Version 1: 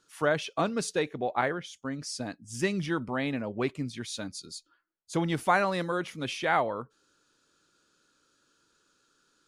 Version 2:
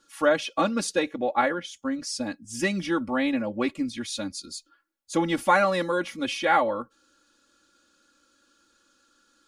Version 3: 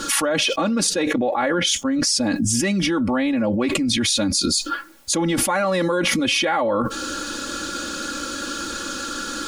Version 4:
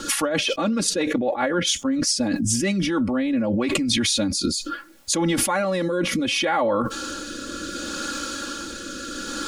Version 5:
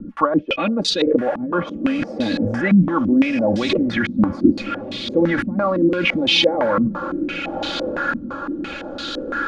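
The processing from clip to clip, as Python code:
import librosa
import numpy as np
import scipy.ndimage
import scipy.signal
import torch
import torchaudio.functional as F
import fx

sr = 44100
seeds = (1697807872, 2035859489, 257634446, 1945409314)

y1 = x + 0.96 * np.pad(x, (int(3.6 * sr / 1000.0), 0))[:len(x)]
y1 = y1 * librosa.db_to_amplitude(1.5)
y2 = fx.low_shelf(y1, sr, hz=470.0, db=3.5)
y2 = fx.env_flatten(y2, sr, amount_pct=100)
y2 = y2 * librosa.db_to_amplitude(-4.5)
y3 = fx.rotary_switch(y2, sr, hz=7.5, then_hz=0.7, switch_at_s=2.3)
y4 = fx.echo_diffused(y3, sr, ms=1218, feedback_pct=40, wet_db=-11.0)
y4 = fx.filter_held_lowpass(y4, sr, hz=5.9, low_hz=210.0, high_hz=3800.0)
y4 = y4 * librosa.db_to_amplitude(1.0)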